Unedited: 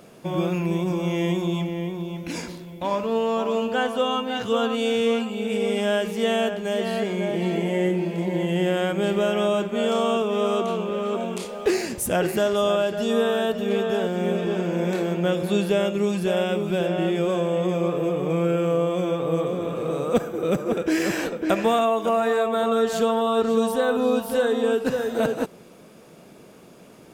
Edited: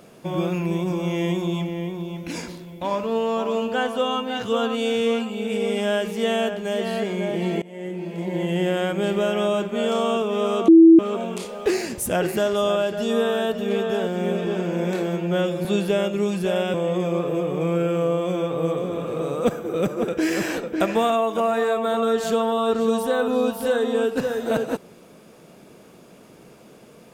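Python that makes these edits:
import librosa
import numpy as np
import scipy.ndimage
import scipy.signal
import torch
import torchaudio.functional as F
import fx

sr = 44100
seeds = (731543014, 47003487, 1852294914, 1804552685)

y = fx.edit(x, sr, fx.fade_in_from(start_s=7.62, length_s=0.84, floor_db=-23.0),
    fx.bleep(start_s=10.68, length_s=0.31, hz=328.0, db=-6.0),
    fx.stretch_span(start_s=15.08, length_s=0.38, factor=1.5),
    fx.cut(start_s=16.55, length_s=0.88), tone=tone)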